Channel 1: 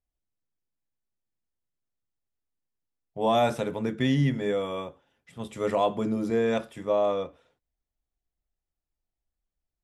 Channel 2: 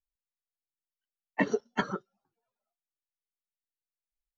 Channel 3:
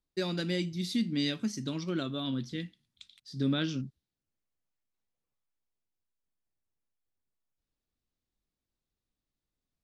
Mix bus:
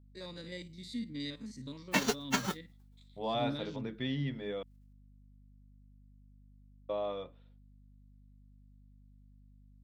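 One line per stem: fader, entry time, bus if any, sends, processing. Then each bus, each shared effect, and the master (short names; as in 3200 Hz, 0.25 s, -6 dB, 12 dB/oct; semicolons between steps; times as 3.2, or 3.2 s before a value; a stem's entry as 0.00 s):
-11.5 dB, 0.00 s, muted 4.63–6.89, no send, resonant high shelf 5500 Hz -11 dB, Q 3
0.0 dB, 0.55 s, no send, spectral whitening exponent 0.3; soft clip -19 dBFS, distortion -14 dB
-10.5 dB, 0.00 s, no send, stepped spectrum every 50 ms; ripple EQ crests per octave 1, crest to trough 9 dB; hum 50 Hz, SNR 12 dB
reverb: off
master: dry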